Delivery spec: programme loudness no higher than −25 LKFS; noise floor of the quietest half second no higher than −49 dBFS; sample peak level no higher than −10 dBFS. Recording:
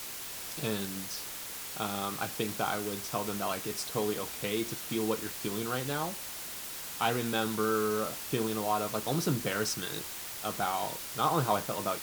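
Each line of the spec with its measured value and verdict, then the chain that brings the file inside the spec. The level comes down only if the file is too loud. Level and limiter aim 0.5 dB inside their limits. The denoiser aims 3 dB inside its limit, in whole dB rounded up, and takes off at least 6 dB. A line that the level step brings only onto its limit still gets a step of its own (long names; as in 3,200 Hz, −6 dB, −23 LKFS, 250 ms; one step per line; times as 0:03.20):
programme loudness −32.5 LKFS: in spec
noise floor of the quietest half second −41 dBFS: out of spec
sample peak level −14.5 dBFS: in spec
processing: broadband denoise 11 dB, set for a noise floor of −41 dBFS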